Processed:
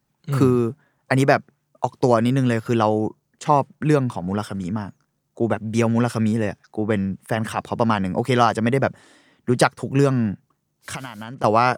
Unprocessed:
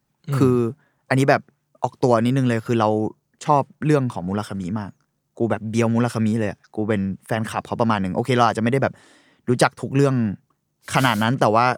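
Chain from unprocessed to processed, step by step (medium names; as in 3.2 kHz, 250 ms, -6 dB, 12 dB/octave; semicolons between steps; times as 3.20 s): 10.33–11.44 s: compression 16:1, threshold -29 dBFS, peak gain reduction 18 dB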